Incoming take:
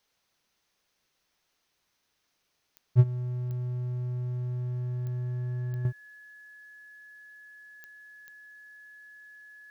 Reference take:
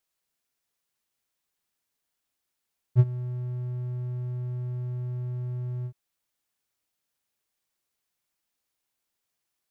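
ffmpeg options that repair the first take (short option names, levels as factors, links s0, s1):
-af "adeclick=t=4,bandreject=f=1700:w=30,agate=range=0.0891:threshold=0.000355,asetnsamples=n=441:p=0,asendcmd='5.85 volume volume -9dB',volume=1"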